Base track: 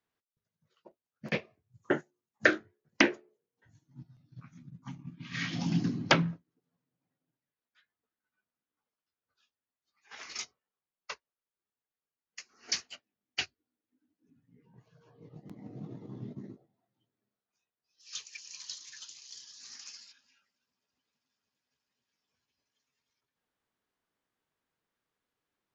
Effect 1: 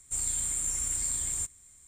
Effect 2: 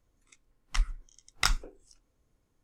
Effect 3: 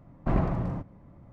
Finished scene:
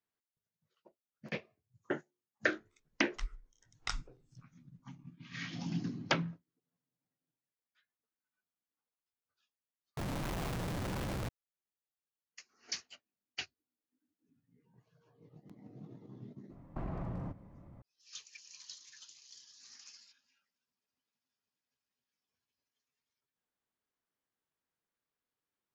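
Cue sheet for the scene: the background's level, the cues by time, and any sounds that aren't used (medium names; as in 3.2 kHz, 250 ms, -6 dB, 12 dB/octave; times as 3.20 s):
base track -7.5 dB
2.44 s: add 2 -11.5 dB + low-pass 7 kHz 24 dB/octave
9.97 s: replace with 3 -7 dB + one-bit comparator
16.50 s: add 3 -3.5 dB + compression 4:1, threshold -33 dBFS
not used: 1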